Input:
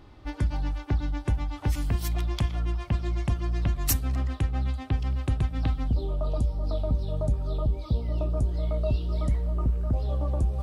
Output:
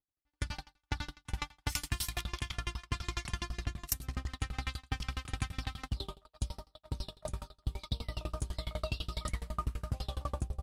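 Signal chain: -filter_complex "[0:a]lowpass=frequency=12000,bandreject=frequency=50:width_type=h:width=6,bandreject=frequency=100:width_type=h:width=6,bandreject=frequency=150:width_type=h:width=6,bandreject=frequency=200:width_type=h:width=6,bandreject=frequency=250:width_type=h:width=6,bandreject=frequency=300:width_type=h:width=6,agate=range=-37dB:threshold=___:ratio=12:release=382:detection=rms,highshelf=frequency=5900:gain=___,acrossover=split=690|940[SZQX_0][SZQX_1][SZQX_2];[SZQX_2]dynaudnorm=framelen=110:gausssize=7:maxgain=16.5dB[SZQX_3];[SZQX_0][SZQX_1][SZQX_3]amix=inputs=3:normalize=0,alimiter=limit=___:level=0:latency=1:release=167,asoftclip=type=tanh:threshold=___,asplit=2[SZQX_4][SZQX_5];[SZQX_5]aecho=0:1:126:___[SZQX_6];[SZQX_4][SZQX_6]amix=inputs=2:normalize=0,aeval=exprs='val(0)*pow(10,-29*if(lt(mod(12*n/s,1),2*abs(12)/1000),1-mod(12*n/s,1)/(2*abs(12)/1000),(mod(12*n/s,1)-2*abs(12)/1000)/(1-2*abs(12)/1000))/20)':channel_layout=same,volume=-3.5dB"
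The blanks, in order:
-26dB, 9, -8.5dB, -11.5dB, 0.0841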